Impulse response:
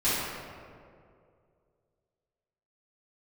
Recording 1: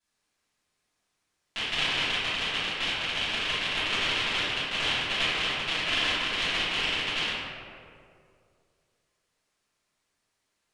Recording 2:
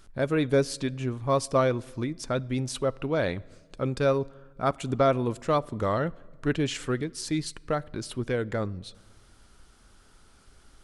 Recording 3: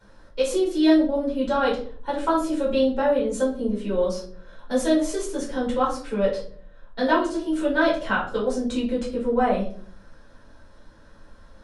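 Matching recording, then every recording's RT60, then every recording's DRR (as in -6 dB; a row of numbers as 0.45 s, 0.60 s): 1; 2.3 s, 1.5 s, 0.50 s; -14.5 dB, 17.5 dB, -6.5 dB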